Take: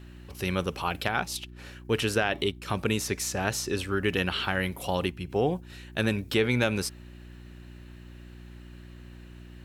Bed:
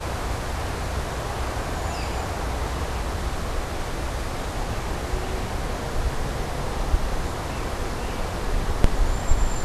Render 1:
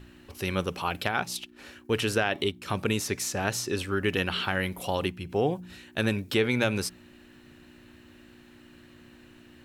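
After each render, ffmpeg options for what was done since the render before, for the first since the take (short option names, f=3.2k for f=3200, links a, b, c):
-af "bandreject=f=60:t=h:w=4,bandreject=f=120:t=h:w=4,bandreject=f=180:t=h:w=4"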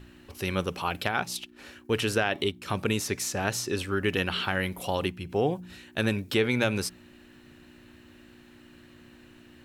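-af anull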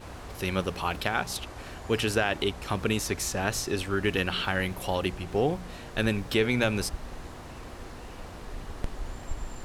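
-filter_complex "[1:a]volume=-14.5dB[a];[0:a][a]amix=inputs=2:normalize=0"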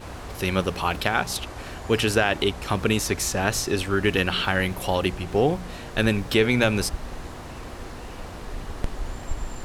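-af "volume=5dB"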